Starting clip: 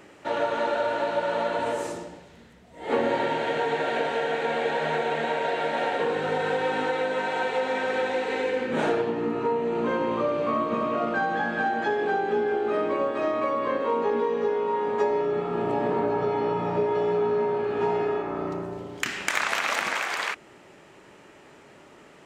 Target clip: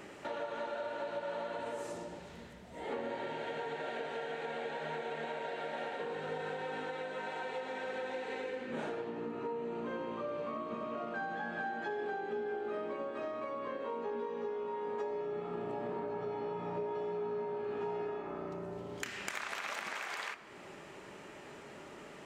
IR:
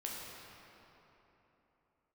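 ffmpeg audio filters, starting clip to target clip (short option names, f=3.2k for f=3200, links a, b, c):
-filter_complex "[0:a]acompressor=threshold=-42dB:ratio=3,asplit=2[a][b];[1:a]atrim=start_sample=2205,adelay=5[c];[b][c]afir=irnorm=-1:irlink=0,volume=-12.5dB[d];[a][d]amix=inputs=2:normalize=0"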